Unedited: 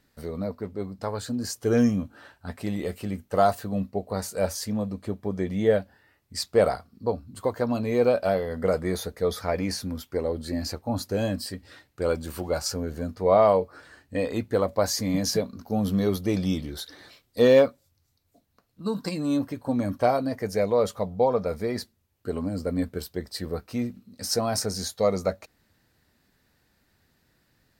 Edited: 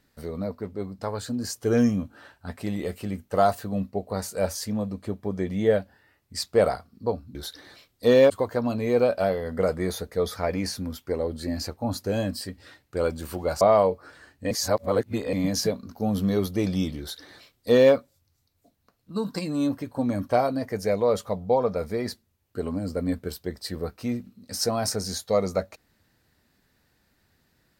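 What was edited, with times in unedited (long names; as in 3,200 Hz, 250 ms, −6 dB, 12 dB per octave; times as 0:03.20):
0:12.66–0:13.31: remove
0:14.21–0:15.03: reverse
0:16.69–0:17.64: duplicate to 0:07.35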